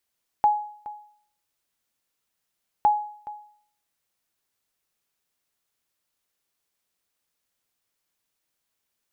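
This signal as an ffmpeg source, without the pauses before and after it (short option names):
-f lavfi -i "aevalsrc='0.251*(sin(2*PI*838*mod(t,2.41))*exp(-6.91*mod(t,2.41)/0.57)+0.126*sin(2*PI*838*max(mod(t,2.41)-0.42,0))*exp(-6.91*max(mod(t,2.41)-0.42,0)/0.57))':d=4.82:s=44100"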